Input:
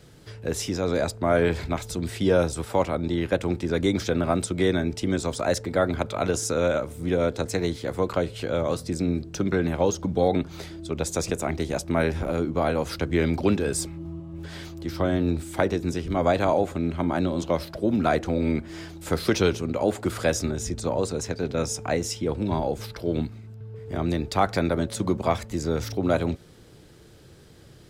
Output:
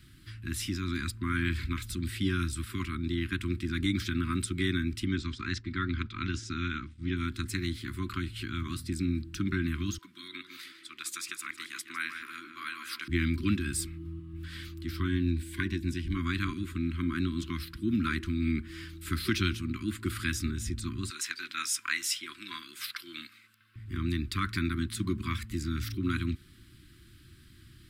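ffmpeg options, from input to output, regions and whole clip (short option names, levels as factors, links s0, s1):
-filter_complex "[0:a]asettb=1/sr,asplit=3[s0][s1][s2];[s0]atrim=end=5.054[s3];[s1]atrim=start=5.05:end=7.17,asetpts=PTS-STARTPTS,afade=t=in:d=0.004:c=qsin,afade=t=out:st=2.116:d=0.004:c=qsin,lowpass=f=5900:w=0.5412,lowpass=f=5900:w=1.3066,agate=range=0.0224:threshold=0.0251:ratio=3:release=100:detection=peak,equalizer=f=750:w=2:g=-4.5[s4];[s2]atrim=start=7.166[s5];[s3][s4]acrossfade=d=0.004:c1=hsin:c2=qsin[s6];[s6][s5]acrossfade=d=0.004:c1=qsin:c2=hsin,asettb=1/sr,asplit=3[s7][s8][s9];[s7]atrim=end=9.984[s10];[s8]atrim=start=9.98:end=13.08,asetpts=PTS-STARTPTS,afade=t=in:d=0.004:c=qsin,afade=t=out:st=3.096:d=0.004:c=qsin,highpass=840,asplit=2[s11][s12];[s12]adelay=153,lowpass=f=2800:p=1,volume=0.473,asplit=2[s13][s14];[s14]adelay=153,lowpass=f=2800:p=1,volume=0.41,asplit=2[s15][s16];[s16]adelay=153,lowpass=f=2800:p=1,volume=0.41,asplit=2[s17][s18];[s18]adelay=153,lowpass=f=2800:p=1,volume=0.41,asplit=2[s19][s20];[s20]adelay=153,lowpass=f=2800:p=1,volume=0.41[s21];[s11][s13][s15][s17][s19][s21]amix=inputs=6:normalize=0,atrim=end_sample=136710[s22];[s9]atrim=start=13.076[s23];[s10][s22]acrossfade=d=0.004:c1=hsin:c2=qsin[s24];[s24][s23]acrossfade=d=0.004:c1=qsin:c2=hsin,asettb=1/sr,asplit=3[s25][s26][s27];[s25]atrim=end=15.084[s28];[s26]atrim=start=15.08:end=16.14,asetpts=PTS-STARTPTS,afade=t=in:d=0.004:c=qsin,afade=t=out:st=1.056:d=0.004:c=qsin,asuperstop=centerf=1300:order=8:qfactor=5.3,highshelf=f=8700:g=-4.5[s29];[s27]atrim=start=16.136[s30];[s28][s29]acrossfade=d=0.004:c1=hsin:c2=qsin[s31];[s31][s30]acrossfade=d=0.004:c1=qsin:c2=hsin,asettb=1/sr,asplit=3[s32][s33][s34];[s32]atrim=end=21.104[s35];[s33]atrim=start=21.1:end=23.76,asetpts=PTS-STARTPTS,afade=t=in:d=0.004:c=qsin,afade=t=out:st=2.656:d=0.004:c=qsin,highpass=1000,acontrast=74[s36];[s34]atrim=start=23.756[s37];[s35][s36]acrossfade=d=0.004:c1=hsin:c2=qsin[s38];[s38][s37]acrossfade=d=0.004:c1=qsin:c2=hsin,equalizer=f=160:t=o:w=0.67:g=-8,equalizer=f=400:t=o:w=0.67:g=-10,equalizer=f=1000:t=o:w=0.67:g=-11,equalizer=f=6300:t=o:w=0.67:g=-10,afftfilt=real='re*(1-between(b*sr/4096,380,1000))':imag='im*(1-between(b*sr/4096,380,1000))':win_size=4096:overlap=0.75"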